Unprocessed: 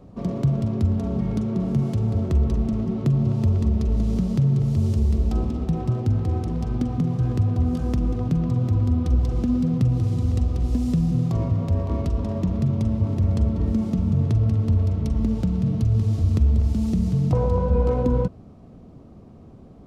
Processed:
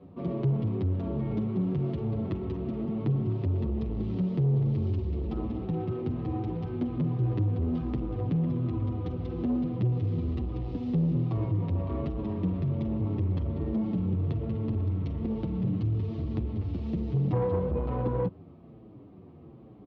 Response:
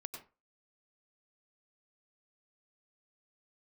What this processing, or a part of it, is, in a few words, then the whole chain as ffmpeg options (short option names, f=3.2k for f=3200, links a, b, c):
barber-pole flanger into a guitar amplifier: -filter_complex "[0:a]asplit=2[a][b];[b]adelay=7.9,afreqshift=-1.2[c];[a][c]amix=inputs=2:normalize=1,asoftclip=type=tanh:threshold=-19.5dB,highpass=93,equalizer=f=230:t=q:w=4:g=-4,equalizer=f=330:t=q:w=4:g=6,equalizer=f=640:t=q:w=4:g=-4,equalizer=f=1.5k:t=q:w=4:g=-4,lowpass=f=3.5k:w=0.5412,lowpass=f=3.5k:w=1.3066"